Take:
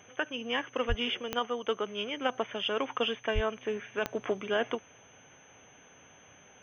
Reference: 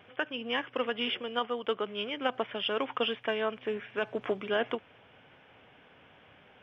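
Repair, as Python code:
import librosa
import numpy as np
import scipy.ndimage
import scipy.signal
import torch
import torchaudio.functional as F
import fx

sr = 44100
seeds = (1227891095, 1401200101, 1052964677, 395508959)

y = fx.fix_declick_ar(x, sr, threshold=10.0)
y = fx.notch(y, sr, hz=6200.0, q=30.0)
y = fx.highpass(y, sr, hz=140.0, slope=24, at=(0.88, 1.0), fade=0.02)
y = fx.highpass(y, sr, hz=140.0, slope=24, at=(3.34, 3.46), fade=0.02)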